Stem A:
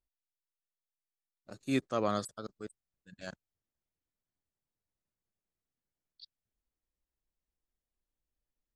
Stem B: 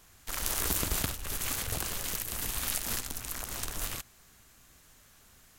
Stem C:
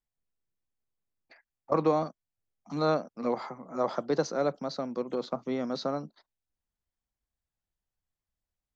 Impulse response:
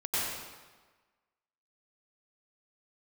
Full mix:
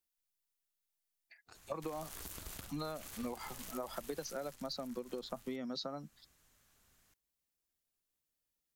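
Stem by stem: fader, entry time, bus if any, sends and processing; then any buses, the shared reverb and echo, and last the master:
-1.5 dB, 0.00 s, bus A, no send, spectral gate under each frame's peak -10 dB weak; compressor, threshold -50 dBFS, peak gain reduction 15.5 dB; auto duck -9 dB, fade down 0.30 s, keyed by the third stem
4.24 s -4 dB -> 5.01 s -12 dB, 1.55 s, no bus, no send, compressor 3:1, threshold -44 dBFS, peak gain reduction 14.5 dB
+0.5 dB, 0.00 s, bus A, no send, per-bin expansion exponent 1.5
bus A: 0.0 dB, high shelf 2300 Hz +8.5 dB; compressor, threshold -30 dBFS, peak gain reduction 10.5 dB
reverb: off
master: compressor 5:1, threshold -38 dBFS, peak gain reduction 10 dB

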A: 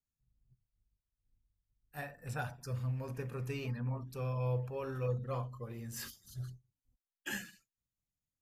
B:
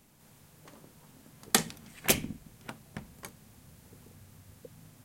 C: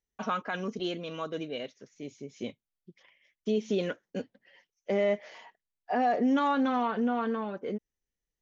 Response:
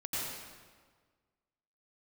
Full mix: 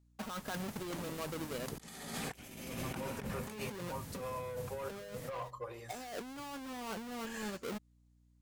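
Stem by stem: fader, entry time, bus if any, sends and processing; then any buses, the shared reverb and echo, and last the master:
-7.5 dB, 0.00 s, no send, graphic EQ 125/250/500/1000/2000/4000/8000 Hz -7/-6/+9/+10/+4/+7/+9 dB; soft clip -30 dBFS, distortion -10 dB; notch comb 220 Hz
0.0 dB, 0.25 s, send -9 dB, dry
-15.0 dB, 0.00 s, no send, half-waves squared off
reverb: on, RT60 1.6 s, pre-delay 82 ms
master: negative-ratio compressor -44 dBFS, ratio -1; hum 60 Hz, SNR 25 dB

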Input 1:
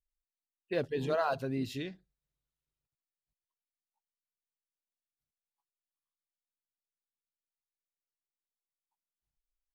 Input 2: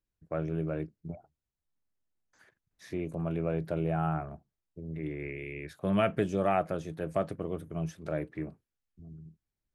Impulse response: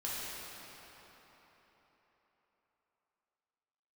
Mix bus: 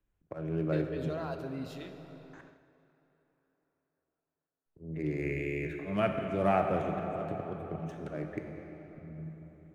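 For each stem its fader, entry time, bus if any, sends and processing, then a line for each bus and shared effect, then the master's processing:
-8.5 dB, 0.00 s, send -8.5 dB, limiter -23 dBFS, peak gain reduction 4.5 dB
0.0 dB, 0.00 s, muted 2.41–4.66, send -3.5 dB, Wiener smoothing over 9 samples; auto swell 0.316 s; three-band squash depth 40%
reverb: on, RT60 4.3 s, pre-delay 3 ms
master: gate -55 dBFS, range -7 dB

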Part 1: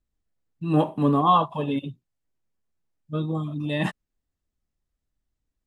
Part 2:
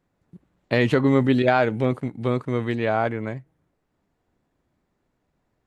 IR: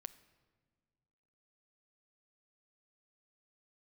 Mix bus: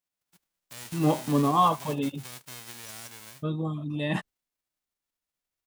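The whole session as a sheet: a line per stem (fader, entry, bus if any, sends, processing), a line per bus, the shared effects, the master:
-3.0 dB, 0.30 s, no send, gate -38 dBFS, range -21 dB
-17.5 dB, 0.00 s, no send, spectral whitening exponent 0.1; limiter -13 dBFS, peak gain reduction 11.5 dB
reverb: off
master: dry

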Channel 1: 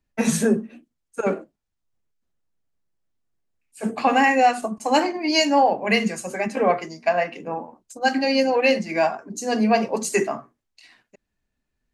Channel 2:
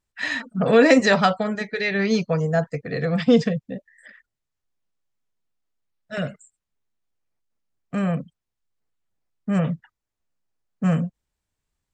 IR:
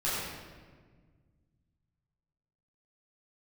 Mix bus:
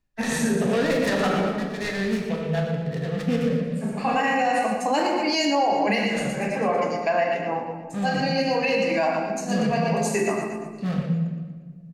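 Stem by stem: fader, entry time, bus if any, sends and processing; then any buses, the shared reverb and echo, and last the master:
-1.0 dB, 0.00 s, send -11.5 dB, echo send -9.5 dB, auto duck -11 dB, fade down 0.20 s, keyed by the second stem
-9.5 dB, 0.00 s, send -6 dB, echo send -9 dB, Wiener smoothing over 15 samples; noise-modulated delay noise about 2000 Hz, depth 0.046 ms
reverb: on, RT60 1.6 s, pre-delay 9 ms
echo: feedback echo 0.118 s, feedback 51%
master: limiter -13.5 dBFS, peak gain reduction 8.5 dB

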